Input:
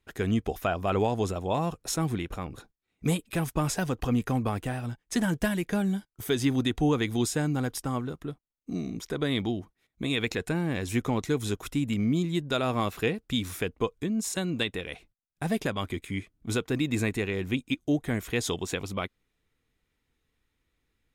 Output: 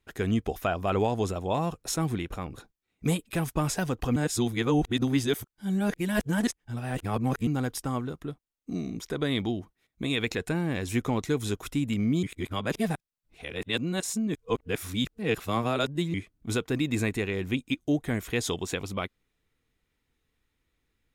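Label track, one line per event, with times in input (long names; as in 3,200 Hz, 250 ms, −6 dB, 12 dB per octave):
4.160000	7.470000	reverse
12.230000	16.140000	reverse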